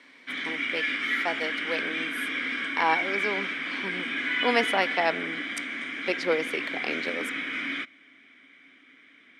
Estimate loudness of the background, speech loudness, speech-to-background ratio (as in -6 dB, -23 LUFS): -29.0 LUFS, -30.5 LUFS, -1.5 dB